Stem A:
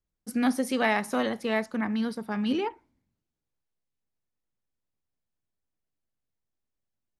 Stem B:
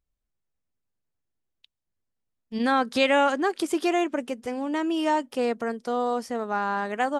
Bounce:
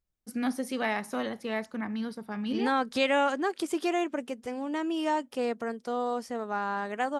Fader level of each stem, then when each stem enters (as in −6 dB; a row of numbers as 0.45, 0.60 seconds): −5.0, −4.5 decibels; 0.00, 0.00 seconds